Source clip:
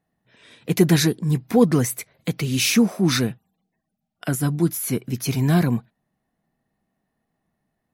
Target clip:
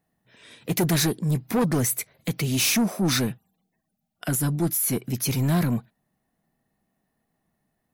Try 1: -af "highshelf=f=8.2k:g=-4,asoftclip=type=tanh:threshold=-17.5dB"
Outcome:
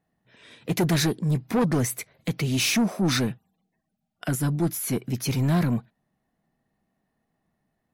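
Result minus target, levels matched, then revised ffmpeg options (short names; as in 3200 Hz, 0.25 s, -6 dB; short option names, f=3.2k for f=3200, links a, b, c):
8000 Hz band -3.5 dB
-af "highshelf=f=8.2k:g=8,asoftclip=type=tanh:threshold=-17.5dB"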